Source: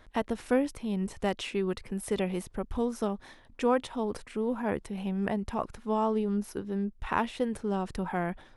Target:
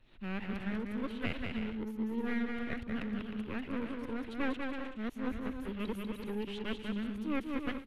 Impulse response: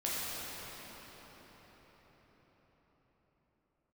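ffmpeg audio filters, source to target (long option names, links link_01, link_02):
-filter_complex "[0:a]areverse,aecho=1:1:210|336|411.6|457|484.2:0.631|0.398|0.251|0.158|0.1,acrossover=split=230|430|2500[link_01][link_02][link_03][link_04];[link_03]aeval=exprs='abs(val(0))':channel_layout=same[link_05];[link_01][link_02][link_05][link_04]amix=inputs=4:normalize=0,asetrate=48000,aresample=44100,highshelf=frequency=4200:width_type=q:width=1.5:gain=-11,volume=-7dB"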